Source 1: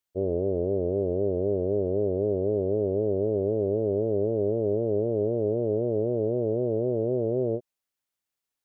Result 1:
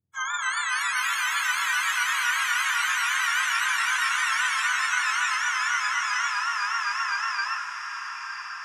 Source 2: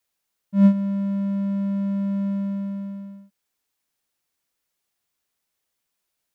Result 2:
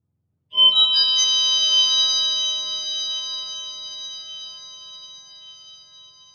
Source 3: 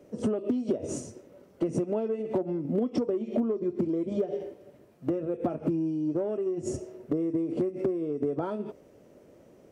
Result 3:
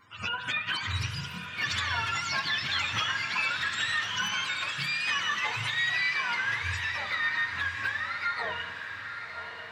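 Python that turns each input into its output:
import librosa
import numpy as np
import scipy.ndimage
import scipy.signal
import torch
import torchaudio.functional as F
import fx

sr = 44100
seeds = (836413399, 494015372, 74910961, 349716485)

y = fx.octave_mirror(x, sr, pivot_hz=780.0)
y = fx.dynamic_eq(y, sr, hz=3600.0, q=5.6, threshold_db=-46.0, ratio=4.0, max_db=8)
y = fx.rev_spring(y, sr, rt60_s=1.9, pass_ms=(40, 46), chirp_ms=40, drr_db=10.0)
y = fx.echo_pitch(y, sr, ms=298, semitones=4, count=3, db_per_echo=-3.0)
y = fx.echo_diffused(y, sr, ms=1071, feedback_pct=45, wet_db=-7.5)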